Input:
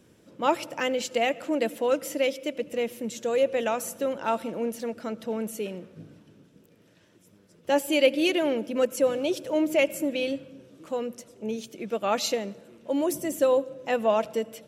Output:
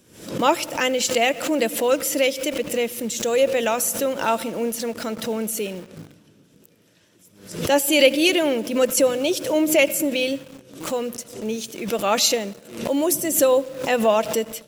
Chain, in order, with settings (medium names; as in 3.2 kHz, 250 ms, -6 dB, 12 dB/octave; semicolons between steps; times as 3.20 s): treble shelf 3.4 kHz +9.5 dB; in parallel at -4 dB: bit crusher 7-bit; on the sum: swell ahead of each attack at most 100 dB/s